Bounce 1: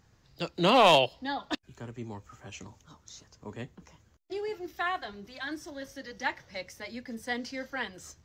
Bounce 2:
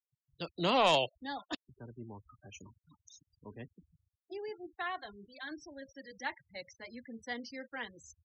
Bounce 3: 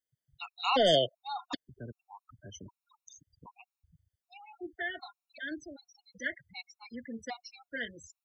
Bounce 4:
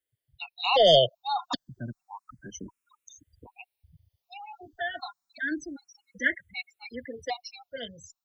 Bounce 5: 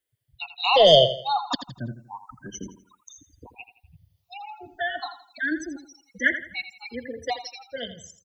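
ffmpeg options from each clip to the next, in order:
-af "afftfilt=real='re*gte(hypot(re,im),0.01)':imag='im*gte(hypot(re,im),0.01)':win_size=1024:overlap=0.75,highshelf=f=8k:g=9.5,volume=-7dB"
-af "acontrast=32,afftfilt=real='re*gt(sin(2*PI*1.3*pts/sr)*(1-2*mod(floor(b*sr/1024/730),2)),0)':imag='im*gt(sin(2*PI*1.3*pts/sr)*(1-2*mod(floor(b*sr/1024/730),2)),0)':win_size=1024:overlap=0.75"
-filter_complex "[0:a]dynaudnorm=f=420:g=5:m=5dB,asplit=2[a][b];[b]afreqshift=0.3[c];[a][c]amix=inputs=2:normalize=1,volume=5dB"
-af "aecho=1:1:83|166|249|332:0.266|0.0931|0.0326|0.0114,volume=4dB"

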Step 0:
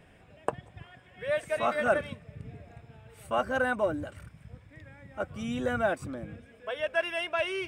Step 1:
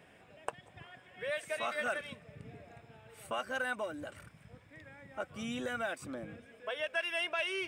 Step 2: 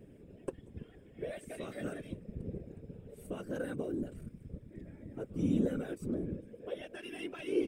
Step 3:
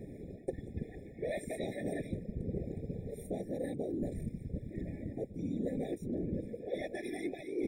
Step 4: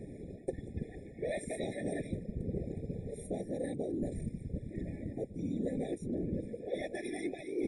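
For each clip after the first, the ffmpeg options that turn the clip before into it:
-filter_complex "[0:a]highpass=f=270:p=1,acrossover=split=1800[a][b];[a]acompressor=threshold=-36dB:ratio=6[c];[c][b]amix=inputs=2:normalize=0"
-af "firequalizer=gain_entry='entry(430,0);entry(670,-25);entry(11000,-12)':delay=0.05:min_phase=1,afftfilt=real='hypot(re,im)*cos(2*PI*random(0))':imag='hypot(re,im)*sin(2*PI*random(1))':win_size=512:overlap=0.75,volume=15.5dB"
-af "areverse,acompressor=threshold=-42dB:ratio=10,areverse,afftfilt=real='re*eq(mod(floor(b*sr/1024/840),2),0)':imag='im*eq(mod(floor(b*sr/1024/840),2),0)':win_size=1024:overlap=0.75,volume=9dB"
-af "highshelf=f=12k:g=11,volume=1dB" -ar 32000 -c:a libmp3lame -b:a 48k

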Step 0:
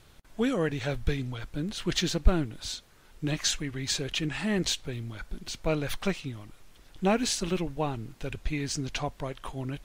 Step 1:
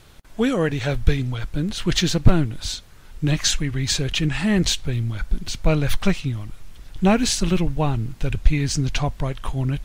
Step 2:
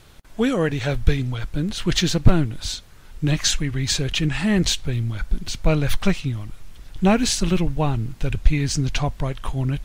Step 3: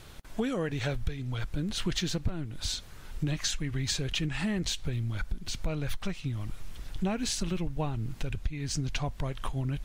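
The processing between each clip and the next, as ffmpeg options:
-af "asubboost=boost=2.5:cutoff=200,aeval=exprs='0.398*(abs(mod(val(0)/0.398+3,4)-2)-1)':c=same,volume=7dB"
-af anull
-af "acompressor=threshold=-28dB:ratio=6"

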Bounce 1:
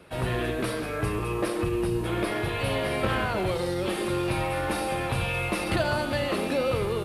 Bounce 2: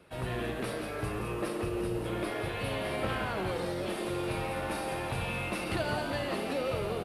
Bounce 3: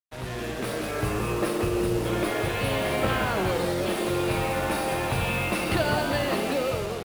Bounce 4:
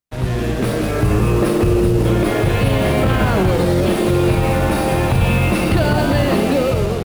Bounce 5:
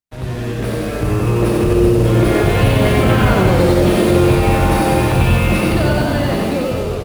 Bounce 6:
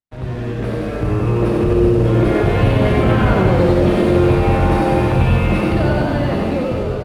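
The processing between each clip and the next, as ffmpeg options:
-filter_complex "[0:a]asplit=8[a][b][c][d][e][f][g][h];[b]adelay=172,afreqshift=96,volume=-8dB[i];[c]adelay=344,afreqshift=192,volume=-13dB[j];[d]adelay=516,afreqshift=288,volume=-18.1dB[k];[e]adelay=688,afreqshift=384,volume=-23.1dB[l];[f]adelay=860,afreqshift=480,volume=-28.1dB[m];[g]adelay=1032,afreqshift=576,volume=-33.2dB[n];[h]adelay=1204,afreqshift=672,volume=-38.2dB[o];[a][i][j][k][l][m][n][o]amix=inputs=8:normalize=0,volume=-7dB"
-af "dynaudnorm=f=190:g=7:m=7.5dB,acrusher=bits=5:mix=0:aa=0.5"
-af "lowshelf=f=330:g=12,alimiter=limit=-12.5dB:level=0:latency=1:release=32,volume=6dB"
-filter_complex "[0:a]dynaudnorm=f=310:g=11:m=11.5dB,asplit=2[a][b];[b]aecho=0:1:93.29|247.8:0.708|0.355[c];[a][c]amix=inputs=2:normalize=0,volume=-4.5dB"
-af "aemphasis=mode=reproduction:type=75kf,aecho=1:1:1045:0.178,volume=-1dB"

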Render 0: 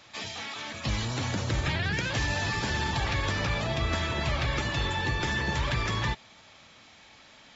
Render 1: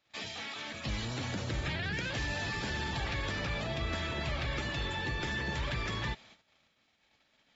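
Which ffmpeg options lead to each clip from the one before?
-filter_complex "[0:a]agate=range=-20dB:threshold=-51dB:ratio=16:detection=peak,equalizer=f=100:t=o:w=0.67:g=-4,equalizer=f=1k:t=o:w=0.67:g=-4,equalizer=f=6.3k:t=o:w=0.67:g=-4,asplit=2[a][b];[b]alimiter=level_in=3.5dB:limit=-24dB:level=0:latency=1:release=34,volume=-3.5dB,volume=0dB[c];[a][c]amix=inputs=2:normalize=0,volume=-8.5dB"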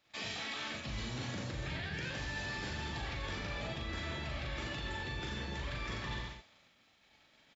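-af "aecho=1:1:40|86|138.9|199.7|269.7:0.631|0.398|0.251|0.158|0.1,areverse,acompressor=threshold=-39dB:ratio=6,areverse,volume=2dB"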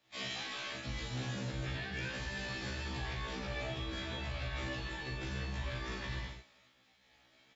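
-filter_complex "[0:a]acrossover=split=220|500|1600[a][b][c][d];[b]crystalizer=i=9:c=0[e];[a][e][c][d]amix=inputs=4:normalize=0,afftfilt=real='re*1.73*eq(mod(b,3),0)':imag='im*1.73*eq(mod(b,3),0)':win_size=2048:overlap=0.75,volume=2dB"

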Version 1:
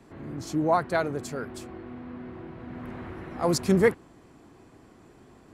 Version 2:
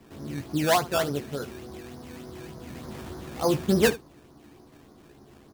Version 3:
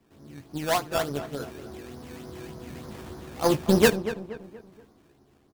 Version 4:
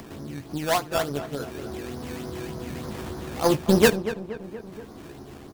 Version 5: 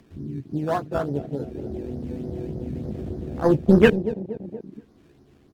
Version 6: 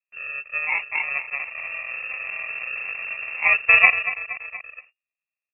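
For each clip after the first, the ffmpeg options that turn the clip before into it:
-filter_complex "[0:a]lowpass=1.4k,acrusher=samples=15:mix=1:aa=0.000001:lfo=1:lforange=15:lforate=3.4,asplit=2[a][b];[b]aecho=0:1:14|74:0.501|0.133[c];[a][c]amix=inputs=2:normalize=0"
-filter_complex "[0:a]aeval=exprs='0.355*(cos(1*acos(clip(val(0)/0.355,-1,1)))-cos(1*PI/2))+0.0251*(cos(7*acos(clip(val(0)/0.355,-1,1)))-cos(7*PI/2))':c=same,dynaudnorm=f=300:g=7:m=14dB,asplit=2[a][b];[b]adelay=237,lowpass=f=2.1k:p=1,volume=-11.5dB,asplit=2[c][d];[d]adelay=237,lowpass=f=2.1k:p=1,volume=0.43,asplit=2[e][f];[f]adelay=237,lowpass=f=2.1k:p=1,volume=0.43,asplit=2[g][h];[h]adelay=237,lowpass=f=2.1k:p=1,volume=0.43[i];[a][c][e][g][i]amix=inputs=5:normalize=0,volume=-5.5dB"
-af "acompressor=mode=upward:threshold=-28dB:ratio=2.5,volume=1.5dB"
-af "aemphasis=mode=reproduction:type=cd,afwtdn=0.0447,equalizer=f=890:w=0.83:g=-7.5,volume=5dB"
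-af "agate=range=-38dB:threshold=-47dB:ratio=16:detection=peak,acrusher=samples=35:mix=1:aa=0.000001,lowpass=f=2.4k:t=q:w=0.5098,lowpass=f=2.4k:t=q:w=0.6013,lowpass=f=2.4k:t=q:w=0.9,lowpass=f=2.4k:t=q:w=2.563,afreqshift=-2800"

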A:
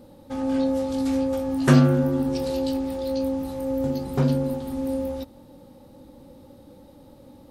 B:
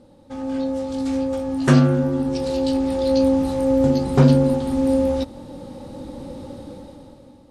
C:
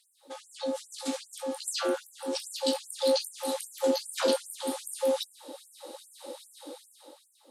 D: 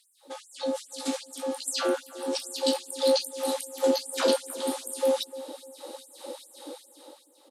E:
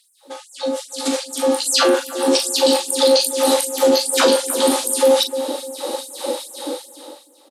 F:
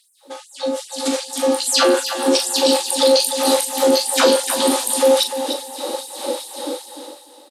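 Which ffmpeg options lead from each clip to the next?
-af "lowpass=f=9.8k:w=0.5412,lowpass=f=9.8k:w=1.3066,dynaudnorm=f=200:g=9:m=15.5dB,volume=-2dB"
-af "aexciter=amount=2.6:drive=2.2:freq=3.1k,asubboost=boost=7:cutoff=77,afftfilt=real='re*gte(b*sr/1024,250*pow(7400/250,0.5+0.5*sin(2*PI*2.5*pts/sr)))':imag='im*gte(b*sr/1024,250*pow(7400/250,0.5+0.5*sin(2*PI*2.5*pts/sr)))':win_size=1024:overlap=0.75,volume=-2.5dB"
-filter_complex "[0:a]asplit=2[a][b];[b]adelay=300,lowpass=f=970:p=1,volume=-14.5dB,asplit=2[c][d];[d]adelay=300,lowpass=f=970:p=1,volume=0.39,asplit=2[e][f];[f]adelay=300,lowpass=f=970:p=1,volume=0.39,asplit=2[g][h];[h]adelay=300,lowpass=f=970:p=1,volume=0.39[i];[a][c][e][g][i]amix=inputs=5:normalize=0,volume=2.5dB"
-filter_complex "[0:a]alimiter=limit=-21.5dB:level=0:latency=1:release=46,dynaudnorm=f=480:g=5:m=10dB,asplit=2[a][b];[b]adelay=40,volume=-8.5dB[c];[a][c]amix=inputs=2:normalize=0,volume=6dB"
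-af "aecho=1:1:299|598|897:0.355|0.0887|0.0222"

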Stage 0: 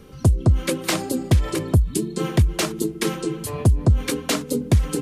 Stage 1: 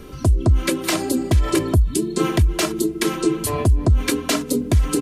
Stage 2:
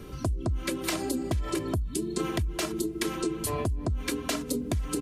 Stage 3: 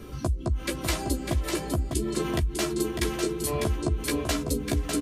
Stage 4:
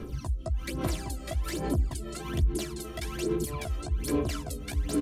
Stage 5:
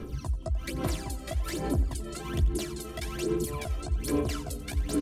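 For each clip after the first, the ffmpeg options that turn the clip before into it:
-af "aecho=1:1:3:0.43,alimiter=limit=-14.5dB:level=0:latency=1:release=256,volume=6.5dB"
-af "acompressor=threshold=-21dB:ratio=6,aeval=exprs='val(0)+0.00794*(sin(2*PI*60*n/s)+sin(2*PI*2*60*n/s)/2+sin(2*PI*3*60*n/s)/3+sin(2*PI*4*60*n/s)/4+sin(2*PI*5*60*n/s)/5)':c=same,volume=-5dB"
-filter_complex "[0:a]asplit=2[a][b];[b]adelay=14,volume=-4dB[c];[a][c]amix=inputs=2:normalize=0,aecho=1:1:600:0.531"
-af "alimiter=limit=-20.5dB:level=0:latency=1:release=104,aphaser=in_gain=1:out_gain=1:delay=1.6:decay=0.69:speed=1.2:type=sinusoidal,volume=-6dB"
-af "aecho=1:1:89|178|267|356:0.141|0.065|0.0299|0.0137"

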